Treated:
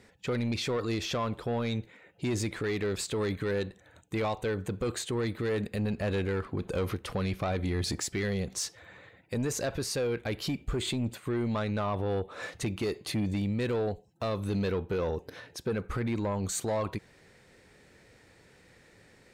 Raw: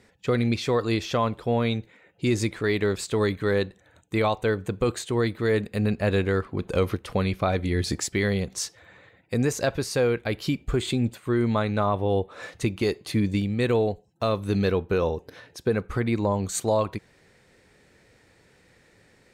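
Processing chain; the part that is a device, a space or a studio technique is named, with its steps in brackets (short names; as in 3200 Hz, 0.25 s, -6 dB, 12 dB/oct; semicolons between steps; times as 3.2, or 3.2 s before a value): soft clipper into limiter (soft clip -19 dBFS, distortion -15 dB; limiter -24.5 dBFS, peak gain reduction 5 dB)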